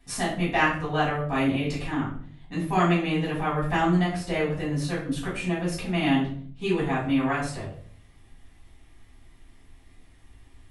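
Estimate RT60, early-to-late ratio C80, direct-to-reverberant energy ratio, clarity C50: 0.55 s, 9.5 dB, -8.0 dB, 5.5 dB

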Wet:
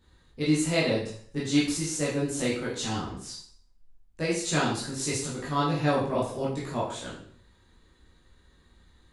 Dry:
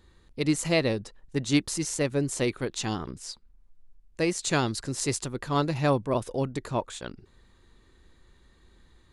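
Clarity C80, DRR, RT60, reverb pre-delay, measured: 8.0 dB, -7.5 dB, 0.55 s, 12 ms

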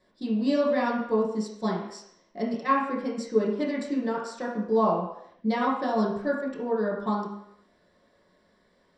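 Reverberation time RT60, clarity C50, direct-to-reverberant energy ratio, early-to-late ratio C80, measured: 0.75 s, 2.5 dB, -6.5 dB, 6.0 dB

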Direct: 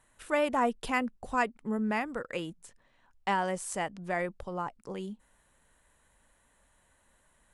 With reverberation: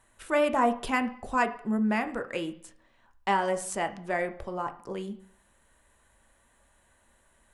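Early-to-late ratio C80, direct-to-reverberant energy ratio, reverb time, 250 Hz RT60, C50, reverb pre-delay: 18.5 dB, 7.0 dB, 0.55 s, 0.55 s, 15.0 dB, 3 ms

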